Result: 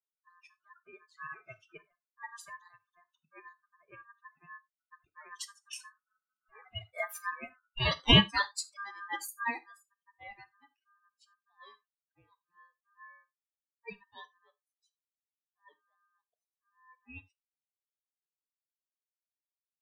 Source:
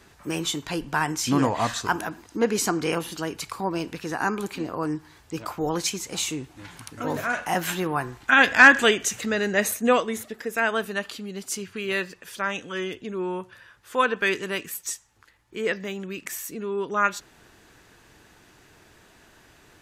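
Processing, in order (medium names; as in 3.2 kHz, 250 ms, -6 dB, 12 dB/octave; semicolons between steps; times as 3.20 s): expander on every frequency bin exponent 3; Doppler pass-by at 7.20 s, 27 m/s, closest 28 m; ring modulator 1.4 kHz; level-controlled noise filter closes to 1.2 kHz, open at -41 dBFS; on a send: reverberation, pre-delay 3 ms, DRR 11.5 dB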